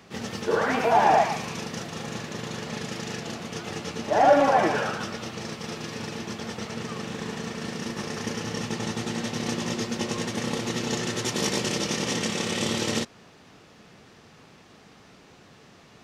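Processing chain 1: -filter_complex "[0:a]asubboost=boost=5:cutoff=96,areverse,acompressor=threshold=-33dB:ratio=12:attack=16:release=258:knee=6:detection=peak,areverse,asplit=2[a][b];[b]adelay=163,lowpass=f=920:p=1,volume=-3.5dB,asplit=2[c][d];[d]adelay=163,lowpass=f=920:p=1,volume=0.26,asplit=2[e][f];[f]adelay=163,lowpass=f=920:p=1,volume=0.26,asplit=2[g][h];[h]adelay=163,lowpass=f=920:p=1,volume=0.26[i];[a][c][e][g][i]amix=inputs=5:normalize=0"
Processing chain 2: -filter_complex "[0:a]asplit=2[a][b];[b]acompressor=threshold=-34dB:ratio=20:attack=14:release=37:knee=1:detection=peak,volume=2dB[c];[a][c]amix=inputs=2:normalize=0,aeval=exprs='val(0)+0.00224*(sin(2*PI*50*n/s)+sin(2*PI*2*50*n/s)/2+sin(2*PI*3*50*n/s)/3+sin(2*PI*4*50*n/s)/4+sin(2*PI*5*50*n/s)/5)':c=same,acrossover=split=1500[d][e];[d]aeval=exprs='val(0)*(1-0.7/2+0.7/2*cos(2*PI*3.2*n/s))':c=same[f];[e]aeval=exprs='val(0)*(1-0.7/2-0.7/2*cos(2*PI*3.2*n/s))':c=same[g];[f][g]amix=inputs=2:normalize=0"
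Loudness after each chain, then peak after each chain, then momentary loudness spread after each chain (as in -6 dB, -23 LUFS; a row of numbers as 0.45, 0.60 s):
-35.5, -27.0 LUFS; -21.0, -7.5 dBFS; 16, 10 LU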